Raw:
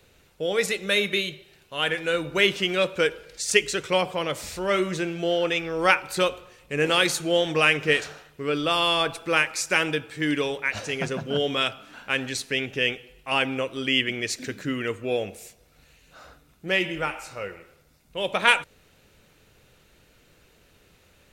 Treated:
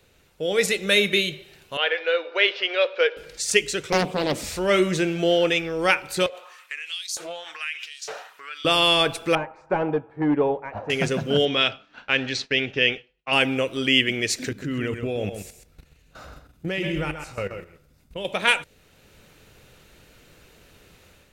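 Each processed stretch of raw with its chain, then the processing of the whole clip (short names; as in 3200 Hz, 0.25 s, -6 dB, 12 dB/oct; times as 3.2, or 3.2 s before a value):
1.77–3.17 elliptic band-pass 480–4900 Hz, stop band 50 dB + air absorption 110 m
3.92–4.44 bell 240 Hz +13.5 dB 1.1 oct + Doppler distortion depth 0.69 ms
6.26–8.65 compressor 16:1, threshold -34 dBFS + LFO high-pass saw up 1.1 Hz 490–6000 Hz + Doppler distortion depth 0.35 ms
9.35–10.9 overloaded stage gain 20.5 dB + synth low-pass 880 Hz, resonance Q 3.1 + upward expander, over -43 dBFS
11.45–13.33 LPF 5300 Hz 24 dB/oct + low shelf 470 Hz -3 dB + expander -40 dBFS
14.49–18.25 low shelf 270 Hz +10 dB + level quantiser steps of 16 dB + echo 0.13 s -8.5 dB
whole clip: dynamic EQ 1100 Hz, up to -5 dB, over -39 dBFS, Q 1.3; AGC gain up to 7 dB; gain -1.5 dB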